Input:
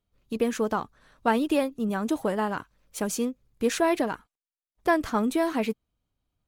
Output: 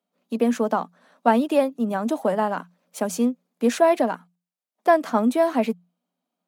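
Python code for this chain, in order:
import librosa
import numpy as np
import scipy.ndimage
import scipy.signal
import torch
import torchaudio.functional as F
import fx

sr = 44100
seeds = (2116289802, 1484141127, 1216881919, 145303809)

y = scipy.signal.sosfilt(scipy.signal.cheby1(6, 9, 170.0, 'highpass', fs=sr, output='sos'), x)
y = y * 10.0 ** (8.5 / 20.0)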